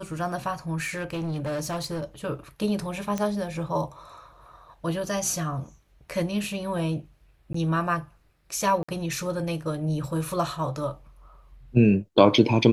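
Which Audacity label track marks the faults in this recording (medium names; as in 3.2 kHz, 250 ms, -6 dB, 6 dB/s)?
0.830000	2.040000	clipped -26 dBFS
3.180000	3.180000	pop -15 dBFS
7.530000	7.540000	dropout 14 ms
8.830000	8.880000	dropout 55 ms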